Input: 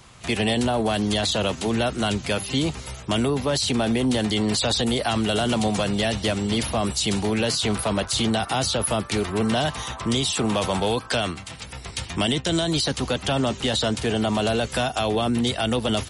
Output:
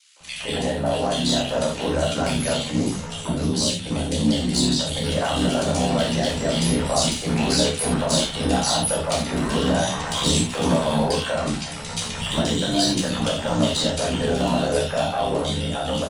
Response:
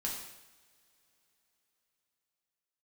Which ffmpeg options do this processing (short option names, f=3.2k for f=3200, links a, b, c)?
-filter_complex "[0:a]equalizer=f=560:w=5.3:g=10,aecho=1:1:6.5:0.5,dynaudnorm=f=110:g=31:m=11.5dB,alimiter=limit=-10dB:level=0:latency=1:release=96,asettb=1/sr,asplit=3[a][b][c];[a]atrim=end=2.654[d];[b]atrim=start=2.65:end=4.97,asetpts=PTS-STARTPTS,afade=t=in:d=0.004:c=qsin,afade=t=out:st=2.316:d=0.004:c=qsin,acrossover=split=360|3000[e][f][g];[f]acompressor=threshold=-28dB:ratio=5[h];[e][h][g]amix=inputs=3:normalize=0[i];[c]atrim=start=4.966[j];[d][i]acrossfade=d=0.004:c1=hsin:c2=qsin[k];[k][j]acrossfade=d=0.004:c1=qsin:c2=hsin,aeval=exprs='val(0)*sin(2*PI*35*n/s)':c=same,asoftclip=type=hard:threshold=-13.5dB,acrossover=split=390|2100[l][m][n];[m]adelay=160[o];[l]adelay=200[p];[p][o][n]amix=inputs=3:normalize=0[q];[1:a]atrim=start_sample=2205,afade=t=out:st=0.15:d=0.01,atrim=end_sample=7056[r];[q][r]afir=irnorm=-1:irlink=0"